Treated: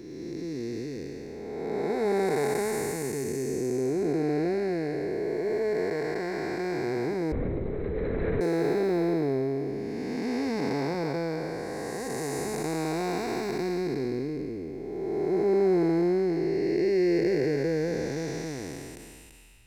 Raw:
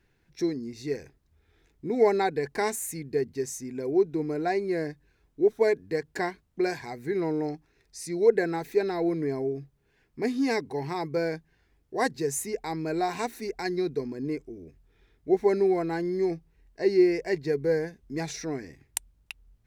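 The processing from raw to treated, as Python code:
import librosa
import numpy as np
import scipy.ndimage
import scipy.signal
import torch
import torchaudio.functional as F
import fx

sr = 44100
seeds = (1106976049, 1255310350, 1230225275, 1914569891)

y = fx.spec_blur(x, sr, span_ms=792.0)
y = fx.lpc_vocoder(y, sr, seeds[0], excitation='whisper', order=8, at=(7.32, 8.41))
y = y * librosa.db_to_amplitude(6.5)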